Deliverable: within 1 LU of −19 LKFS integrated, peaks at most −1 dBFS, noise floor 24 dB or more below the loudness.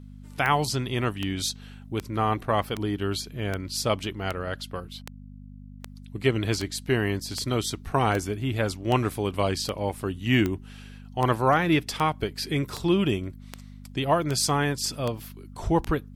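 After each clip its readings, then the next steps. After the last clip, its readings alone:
number of clicks 21; mains hum 50 Hz; hum harmonics up to 250 Hz; level of the hum −42 dBFS; integrated loudness −26.5 LKFS; sample peak −8.5 dBFS; target loudness −19.0 LKFS
→ click removal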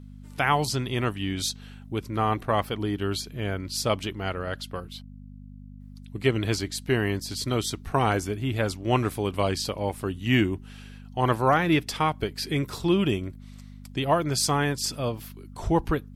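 number of clicks 0; mains hum 50 Hz; hum harmonics up to 250 Hz; level of the hum −42 dBFS
→ hum removal 50 Hz, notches 5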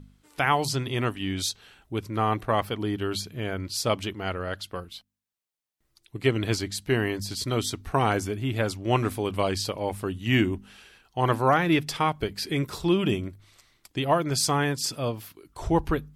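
mains hum none found; integrated loudness −27.0 LKFS; sample peak −8.0 dBFS; target loudness −19.0 LKFS
→ level +8 dB
brickwall limiter −1 dBFS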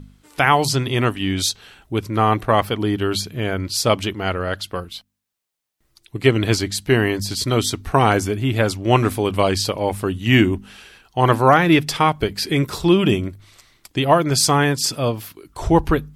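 integrated loudness −19.0 LKFS; sample peak −1.0 dBFS; background noise floor −66 dBFS

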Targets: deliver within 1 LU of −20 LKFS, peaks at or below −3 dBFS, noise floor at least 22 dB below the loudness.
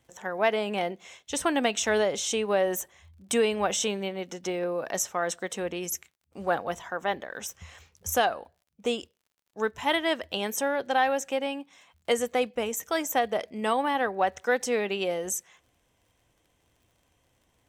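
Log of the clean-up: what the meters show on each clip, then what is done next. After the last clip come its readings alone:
crackle rate 39 per second; integrated loudness −28.5 LKFS; sample peak −10.5 dBFS; target loudness −20.0 LKFS
→ click removal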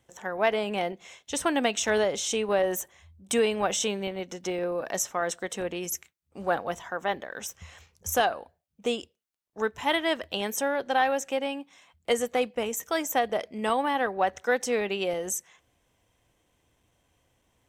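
crackle rate 0.057 per second; integrated loudness −28.5 LKFS; sample peak −10.5 dBFS; target loudness −20.0 LKFS
→ level +8.5 dB
brickwall limiter −3 dBFS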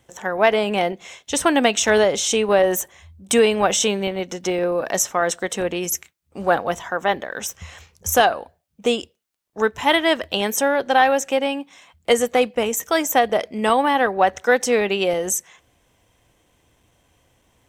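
integrated loudness −20.0 LKFS; sample peak −3.0 dBFS; background noise floor −66 dBFS

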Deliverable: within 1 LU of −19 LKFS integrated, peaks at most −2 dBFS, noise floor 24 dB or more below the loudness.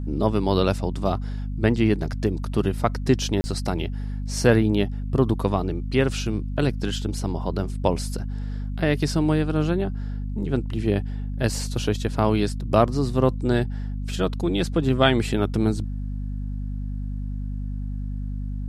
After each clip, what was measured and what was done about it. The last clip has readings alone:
number of dropouts 1; longest dropout 30 ms; mains hum 50 Hz; hum harmonics up to 250 Hz; level of the hum −26 dBFS; integrated loudness −24.5 LKFS; sample peak −3.5 dBFS; target loudness −19.0 LKFS
→ repair the gap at 0:03.41, 30 ms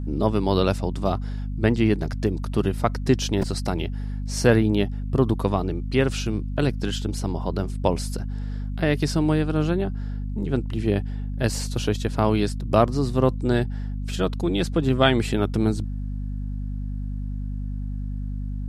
number of dropouts 0; mains hum 50 Hz; hum harmonics up to 250 Hz; level of the hum −26 dBFS
→ mains-hum notches 50/100/150/200/250 Hz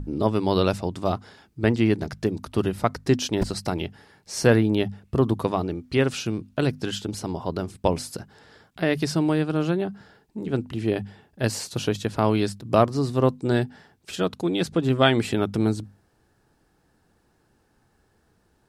mains hum none found; integrated loudness −25.0 LKFS; sample peak −4.0 dBFS; target loudness −19.0 LKFS
→ level +6 dB
brickwall limiter −2 dBFS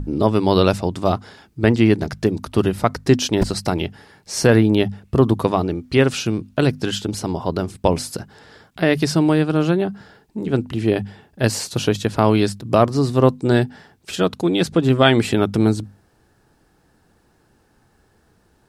integrated loudness −19.0 LKFS; sample peak −2.0 dBFS; background noise floor −60 dBFS

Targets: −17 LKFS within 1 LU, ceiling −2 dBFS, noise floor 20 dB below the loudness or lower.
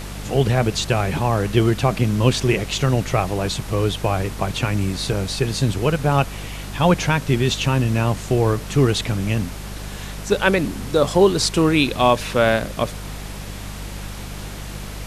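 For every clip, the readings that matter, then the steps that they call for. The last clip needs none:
mains hum 50 Hz; hum harmonics up to 200 Hz; level of the hum −31 dBFS; background noise floor −32 dBFS; target noise floor −40 dBFS; integrated loudness −20.0 LKFS; sample peak −1.5 dBFS; target loudness −17.0 LKFS
→ hum removal 50 Hz, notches 4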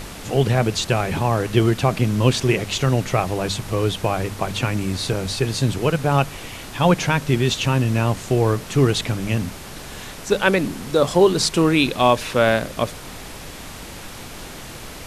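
mains hum none found; background noise floor −36 dBFS; target noise floor −40 dBFS
→ noise reduction from a noise print 6 dB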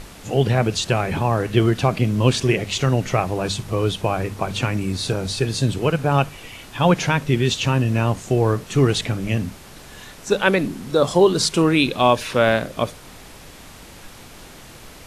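background noise floor −42 dBFS; integrated loudness −20.0 LKFS; sample peak −2.0 dBFS; target loudness −17.0 LKFS
→ level +3 dB
brickwall limiter −2 dBFS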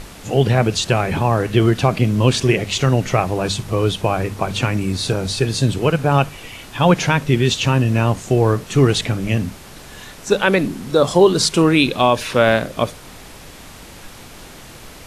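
integrated loudness −17.5 LKFS; sample peak −2.0 dBFS; background noise floor −39 dBFS

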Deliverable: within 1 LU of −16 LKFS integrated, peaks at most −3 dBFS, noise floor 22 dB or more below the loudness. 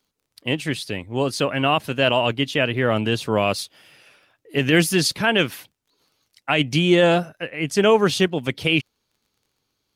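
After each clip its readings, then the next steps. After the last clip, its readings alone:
crackle rate 25 per second; integrated loudness −20.5 LKFS; sample peak −6.5 dBFS; target loudness −16.0 LKFS
→ click removal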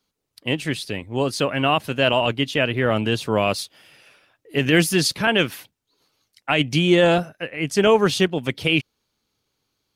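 crackle rate 0.10 per second; integrated loudness −20.5 LKFS; sample peak −6.5 dBFS; target loudness −16.0 LKFS
→ level +4.5 dB
brickwall limiter −3 dBFS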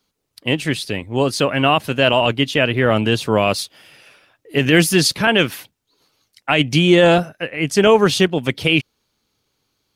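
integrated loudness −16.5 LKFS; sample peak −3.0 dBFS; background noise floor −73 dBFS

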